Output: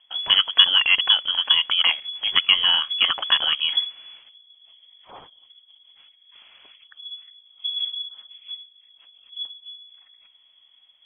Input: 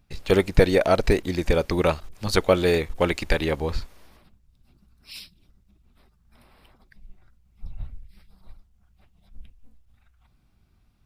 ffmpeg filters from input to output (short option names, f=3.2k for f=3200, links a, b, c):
-filter_complex "[0:a]asplit=2[a][b];[b]acompressor=threshold=-26dB:ratio=6,volume=0.5dB[c];[a][c]amix=inputs=2:normalize=0,lowpass=f=2.9k:t=q:w=0.5098,lowpass=f=2.9k:t=q:w=0.6013,lowpass=f=2.9k:t=q:w=0.9,lowpass=f=2.9k:t=q:w=2.563,afreqshift=-3400,volume=-1.5dB"